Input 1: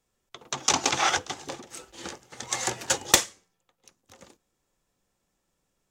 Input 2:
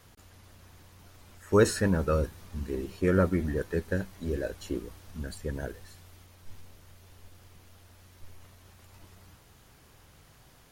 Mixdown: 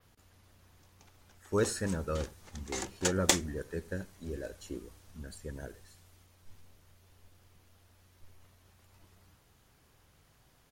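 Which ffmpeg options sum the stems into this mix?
ffmpeg -i stem1.wav -i stem2.wav -filter_complex "[0:a]aeval=exprs='val(0)*pow(10,-29*if(lt(mod(3.5*n/s,1),2*abs(3.5)/1000),1-mod(3.5*n/s,1)/(2*abs(3.5)/1000),(mod(3.5*n/s,1)-2*abs(3.5)/1000)/(1-2*abs(3.5)/1000))/20)':channel_layout=same,adelay=150,volume=-1.5dB[link_01];[1:a]adynamicequalizer=threshold=0.00112:dfrequency=7800:dqfactor=1:tfrequency=7800:tqfactor=1:attack=5:release=100:ratio=0.375:range=3:mode=boostabove:tftype=bell,volume=-8dB,asplit=3[link_02][link_03][link_04];[link_03]volume=-20dB[link_05];[link_04]apad=whole_len=267193[link_06];[link_01][link_06]sidechaingate=range=-36dB:threshold=-55dB:ratio=16:detection=peak[link_07];[link_05]aecho=0:1:86:1[link_08];[link_07][link_02][link_08]amix=inputs=3:normalize=0" out.wav

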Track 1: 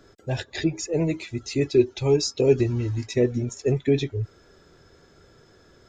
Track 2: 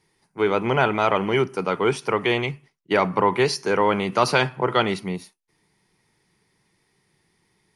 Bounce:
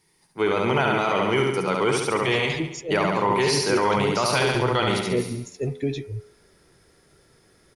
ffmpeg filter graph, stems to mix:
ffmpeg -i stem1.wav -i stem2.wav -filter_complex "[0:a]bandreject=frequency=84.03:width_type=h:width=4,bandreject=frequency=168.06:width_type=h:width=4,bandreject=frequency=252.09:width_type=h:width=4,bandreject=frequency=336.12:width_type=h:width=4,bandreject=frequency=420.15:width_type=h:width=4,bandreject=frequency=504.18:width_type=h:width=4,bandreject=frequency=588.21:width_type=h:width=4,bandreject=frequency=672.24:width_type=h:width=4,bandreject=frequency=756.27:width_type=h:width=4,bandreject=frequency=840.3:width_type=h:width=4,bandreject=frequency=924.33:width_type=h:width=4,bandreject=frequency=1008.36:width_type=h:width=4,bandreject=frequency=1092.39:width_type=h:width=4,bandreject=frequency=1176.42:width_type=h:width=4,bandreject=frequency=1260.45:width_type=h:width=4,bandreject=frequency=1344.48:width_type=h:width=4,bandreject=frequency=1428.51:width_type=h:width=4,bandreject=frequency=1512.54:width_type=h:width=4,bandreject=frequency=1596.57:width_type=h:width=4,bandreject=frequency=1680.6:width_type=h:width=4,bandreject=frequency=1764.63:width_type=h:width=4,bandreject=frequency=1848.66:width_type=h:width=4,bandreject=frequency=1932.69:width_type=h:width=4,bandreject=frequency=2016.72:width_type=h:width=4,bandreject=frequency=2100.75:width_type=h:width=4,bandreject=frequency=2184.78:width_type=h:width=4,bandreject=frequency=2268.81:width_type=h:width=4,bandreject=frequency=2352.84:width_type=h:width=4,bandreject=frequency=2436.87:width_type=h:width=4,bandreject=frequency=2520.9:width_type=h:width=4,bandreject=frequency=2604.93:width_type=h:width=4,adelay=1950,volume=-4.5dB[link_01];[1:a]highshelf=frequency=5400:gain=9.5,volume=-1dB,asplit=2[link_02][link_03];[link_03]volume=-4dB,aecho=0:1:69|138|207|276|345|414|483|552|621:1|0.57|0.325|0.185|0.106|0.0602|0.0343|0.0195|0.0111[link_04];[link_01][link_02][link_04]amix=inputs=3:normalize=0,alimiter=limit=-12dB:level=0:latency=1:release=19" out.wav

